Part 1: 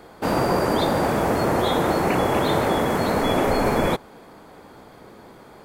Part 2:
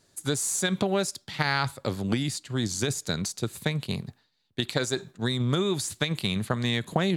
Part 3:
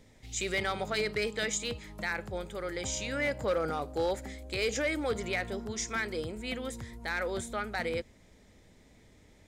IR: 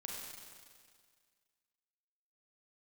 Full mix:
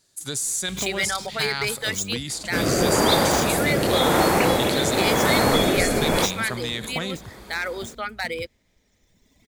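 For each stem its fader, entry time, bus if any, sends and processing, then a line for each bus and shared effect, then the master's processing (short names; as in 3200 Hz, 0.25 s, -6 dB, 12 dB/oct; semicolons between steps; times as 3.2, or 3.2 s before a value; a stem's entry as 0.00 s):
-0.5 dB, 2.30 s, send -8 dB, rotary speaker horn 0.9 Hz
-7.5 dB, 0.00 s, send -15.5 dB, sustainer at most 66 dB/s
+3.0 dB, 0.45 s, no send, median filter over 5 samples; reverb removal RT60 1.9 s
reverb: on, RT60 1.9 s, pre-delay 32 ms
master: high shelf 2200 Hz +10 dB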